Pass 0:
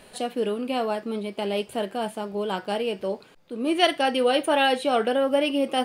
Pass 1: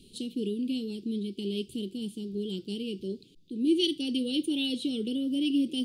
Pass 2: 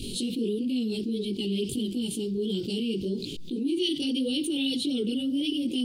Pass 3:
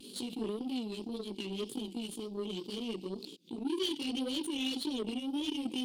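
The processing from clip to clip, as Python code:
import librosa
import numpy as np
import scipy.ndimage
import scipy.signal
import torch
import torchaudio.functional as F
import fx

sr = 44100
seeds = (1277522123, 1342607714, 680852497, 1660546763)

y1 = scipy.signal.sosfilt(scipy.signal.ellip(3, 1.0, 40, [350.0, 3300.0], 'bandstop', fs=sr, output='sos'), x)
y1 = fx.high_shelf(y1, sr, hz=6500.0, db=-10.0)
y1 = y1 * librosa.db_to_amplitude(1.0)
y2 = fx.chorus_voices(y1, sr, voices=2, hz=1.5, base_ms=19, depth_ms=3.0, mix_pct=60)
y2 = fx.env_flatten(y2, sr, amount_pct=70)
y3 = scipy.signal.sosfilt(scipy.signal.butter(4, 200.0, 'highpass', fs=sr, output='sos'), y2)
y3 = fx.vibrato(y3, sr, rate_hz=1.9, depth_cents=64.0)
y3 = fx.cheby_harmonics(y3, sr, harmonics=(3, 5, 7), levels_db=(-17, -19, -19), full_scale_db=-15.0)
y3 = y3 * librosa.db_to_amplitude(-4.5)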